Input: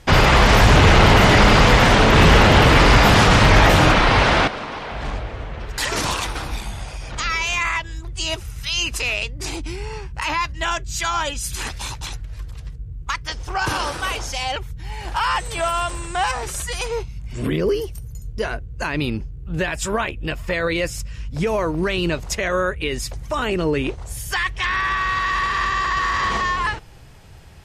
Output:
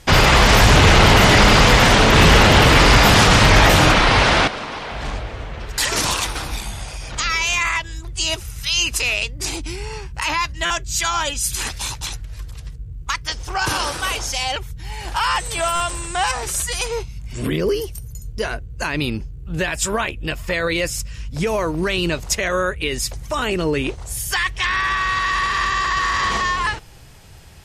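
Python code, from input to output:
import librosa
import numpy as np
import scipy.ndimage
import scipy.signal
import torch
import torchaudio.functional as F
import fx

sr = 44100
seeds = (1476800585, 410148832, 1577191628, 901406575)

y = fx.high_shelf(x, sr, hz=3600.0, db=7.5)
y = fx.buffer_glitch(y, sr, at_s=(10.65, 15.75), block=256, repeats=8)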